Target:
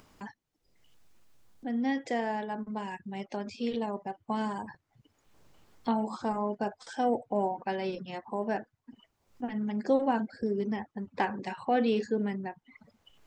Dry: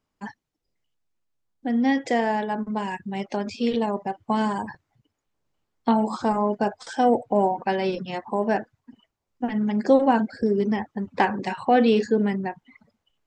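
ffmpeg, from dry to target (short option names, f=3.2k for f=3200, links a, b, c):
-af "acompressor=mode=upward:threshold=-30dB:ratio=2.5,volume=-8.5dB"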